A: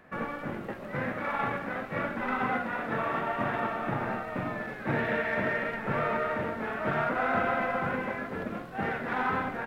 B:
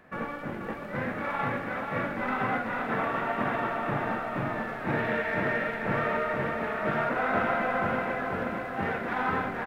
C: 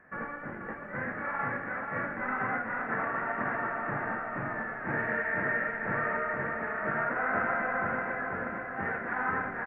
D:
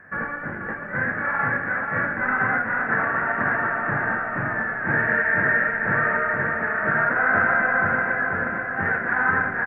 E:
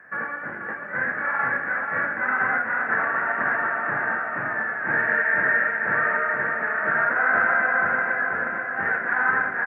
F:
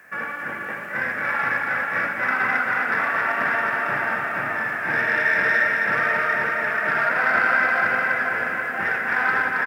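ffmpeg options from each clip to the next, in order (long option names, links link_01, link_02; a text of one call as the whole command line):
ffmpeg -i in.wav -af "aecho=1:1:484|968|1452|1936|2420|2904|3388|3872:0.501|0.301|0.18|0.108|0.065|0.039|0.0234|0.014" out.wav
ffmpeg -i in.wav -af "highshelf=frequency=2600:width_type=q:width=3:gain=-13.5,volume=-6dB" out.wav
ffmpeg -i in.wav -af "acontrast=57,equalizer=frequency=100:width_type=o:width=0.33:gain=9,equalizer=frequency=160:width_type=o:width=0.33:gain=4,equalizer=frequency=1600:width_type=o:width=0.33:gain=8" out.wav
ffmpeg -i in.wav -af "highpass=frequency=460:poles=1" out.wav
ffmpeg -i in.wav -filter_complex "[0:a]aexciter=amount=5.4:drive=8.3:freq=2500,asplit=2[link_01][link_02];[link_02]aecho=0:1:78.72|271.1:0.355|0.562[link_03];[link_01][link_03]amix=inputs=2:normalize=0" out.wav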